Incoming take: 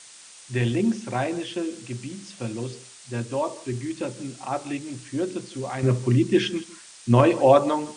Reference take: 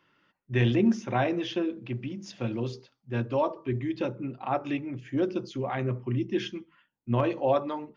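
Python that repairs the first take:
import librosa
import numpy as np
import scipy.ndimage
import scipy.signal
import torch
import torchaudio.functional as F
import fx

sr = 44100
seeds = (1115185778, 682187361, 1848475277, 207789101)

y = fx.noise_reduce(x, sr, print_start_s=0.0, print_end_s=0.5, reduce_db=20.0)
y = fx.fix_echo_inverse(y, sr, delay_ms=160, level_db=-19.5)
y = fx.fix_level(y, sr, at_s=5.83, step_db=-9.0)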